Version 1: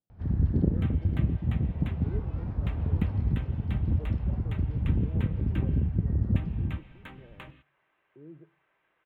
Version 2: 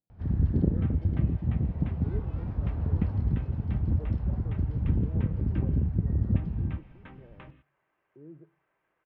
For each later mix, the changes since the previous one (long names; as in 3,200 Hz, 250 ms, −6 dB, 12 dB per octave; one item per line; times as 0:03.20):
second sound: add head-to-tape spacing loss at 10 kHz 30 dB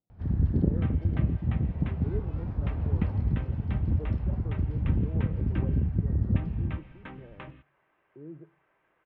speech +4.0 dB
second sound +6.0 dB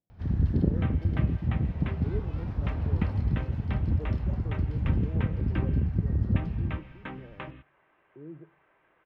first sound: add high-shelf EQ 2,100 Hz +11 dB
second sound +4.5 dB